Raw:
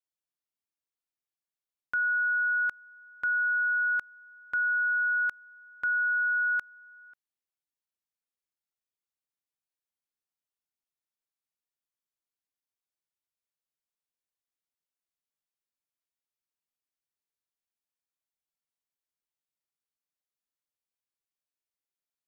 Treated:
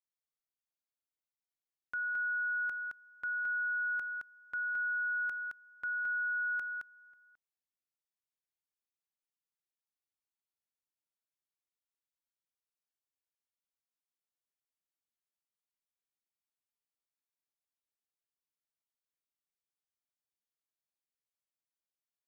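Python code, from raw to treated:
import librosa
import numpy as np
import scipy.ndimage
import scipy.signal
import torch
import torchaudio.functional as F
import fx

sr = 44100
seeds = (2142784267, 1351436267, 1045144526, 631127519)

y = x + 10.0 ** (-4.0 / 20.0) * np.pad(x, (int(218 * sr / 1000.0), 0))[:len(x)]
y = F.gain(torch.from_numpy(y), -8.5).numpy()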